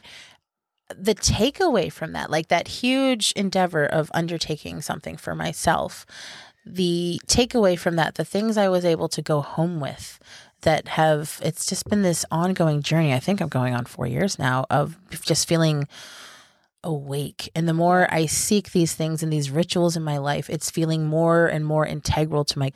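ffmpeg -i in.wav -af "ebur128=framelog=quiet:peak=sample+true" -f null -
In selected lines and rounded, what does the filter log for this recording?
Integrated loudness:
  I:         -22.5 LUFS
  Threshold: -33.0 LUFS
Loudness range:
  LRA:         2.9 LU
  Threshold: -43.0 LUFS
  LRA low:   -24.7 LUFS
  LRA high:  -21.8 LUFS
Sample peak:
  Peak:       -5.3 dBFS
True peak:
  Peak:       -5.1 dBFS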